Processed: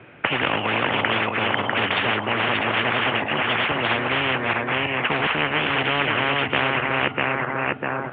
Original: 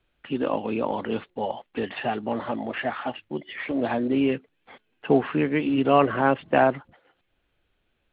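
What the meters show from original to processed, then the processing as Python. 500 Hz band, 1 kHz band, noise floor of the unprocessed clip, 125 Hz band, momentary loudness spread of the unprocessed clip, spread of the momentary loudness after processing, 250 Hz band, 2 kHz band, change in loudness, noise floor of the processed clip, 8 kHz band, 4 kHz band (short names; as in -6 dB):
-1.0 dB, +4.5 dB, -73 dBFS, +5.0 dB, 12 LU, 2 LU, -3.0 dB, +13.0 dB, +4.0 dB, -33 dBFS, n/a, +16.5 dB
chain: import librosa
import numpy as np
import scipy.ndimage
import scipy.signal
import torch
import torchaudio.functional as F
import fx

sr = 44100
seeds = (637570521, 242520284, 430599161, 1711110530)

y = fx.reverse_delay_fb(x, sr, ms=324, feedback_pct=42, wet_db=-5.5)
y = scipy.signal.sosfilt(scipy.signal.ellip(3, 1.0, 40, [100.0, 2400.0], 'bandpass', fs=sr, output='sos'), y)
y = fx.spectral_comp(y, sr, ratio=10.0)
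y = y * 10.0 ** (1.5 / 20.0)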